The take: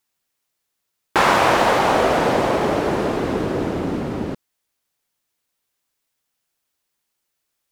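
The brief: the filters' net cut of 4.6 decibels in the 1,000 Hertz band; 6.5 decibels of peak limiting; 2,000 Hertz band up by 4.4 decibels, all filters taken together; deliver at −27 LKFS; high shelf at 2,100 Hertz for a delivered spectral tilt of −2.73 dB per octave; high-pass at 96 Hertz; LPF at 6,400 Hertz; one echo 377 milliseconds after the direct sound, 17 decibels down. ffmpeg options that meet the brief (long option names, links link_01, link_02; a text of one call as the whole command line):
ffmpeg -i in.wav -af "highpass=96,lowpass=6400,equalizer=frequency=1000:width_type=o:gain=-8.5,equalizer=frequency=2000:width_type=o:gain=6.5,highshelf=frequency=2100:gain=3.5,alimiter=limit=-9dB:level=0:latency=1,aecho=1:1:377:0.141,volume=-6.5dB" out.wav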